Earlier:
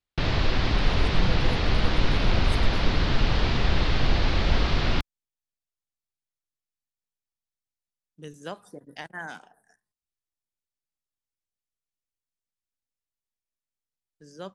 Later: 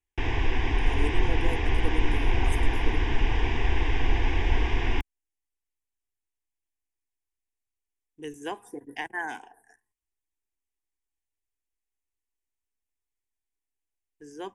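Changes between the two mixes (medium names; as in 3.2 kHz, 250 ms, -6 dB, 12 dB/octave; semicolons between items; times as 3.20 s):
speech +7.0 dB; master: add static phaser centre 870 Hz, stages 8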